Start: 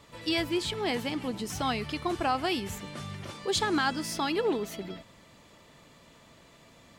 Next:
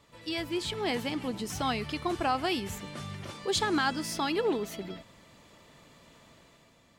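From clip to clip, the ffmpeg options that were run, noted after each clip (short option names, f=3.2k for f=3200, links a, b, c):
-af "dynaudnorm=f=100:g=11:m=6dB,volume=-6.5dB"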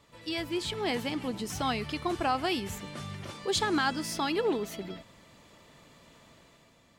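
-af anull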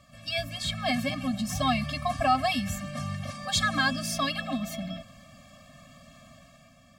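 -af "afftfilt=real='re*eq(mod(floor(b*sr/1024/260),2),0)':imag='im*eq(mod(floor(b*sr/1024/260),2),0)':win_size=1024:overlap=0.75,volume=7dB"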